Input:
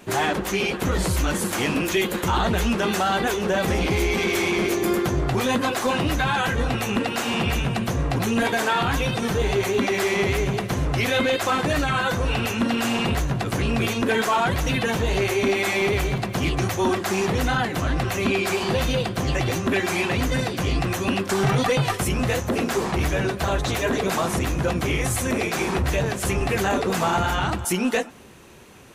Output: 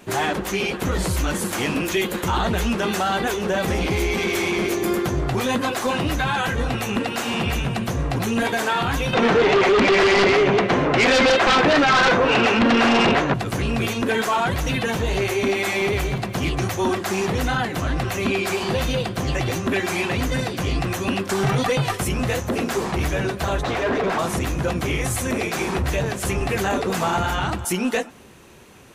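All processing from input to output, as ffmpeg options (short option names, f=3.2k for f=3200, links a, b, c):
-filter_complex "[0:a]asettb=1/sr,asplit=3[a][b][c];[a]atrim=end=9.134[d];[b]atrim=start=9.13:end=13.34,asetpts=PTS-STARTPTS,afade=t=in:d=0.004:c=qsin,afade=t=out:st=4.206:d=0.004:c=qsin,highpass=270,lowpass=2.6k,aeval=exprs='0.237*sin(PI/2*2.82*val(0)/0.237)':c=same[e];[c]atrim=start=13.336[f];[d][e]acrossfade=d=0.004:c1=hsin:c2=qsin[g];[g][f]acrossfade=d=0.004:c1=qsin:c2=hsin,asettb=1/sr,asplit=3[h][i][j];[h]atrim=end=23.634[k];[i]atrim=start=23.63:end=24.19,asetpts=PTS-STARTPTS,afade=t=in:d=0.004:c=qsin,afade=t=out:st=0.556:d=0.004:c=qsin,lowpass=f=3.4k:p=1,asplit=2[l][m];[m]highpass=f=720:p=1,volume=20dB,asoftclip=type=tanh:threshold=-14dB[n];[l][n]amix=inputs=2:normalize=0,lowpass=f=1.3k:p=1,volume=-6dB[o];[j]atrim=start=24.186[p];[k][o]acrossfade=d=0.004:c1=hsin:c2=qsin[q];[q][p]acrossfade=d=0.004:c1=qsin:c2=hsin"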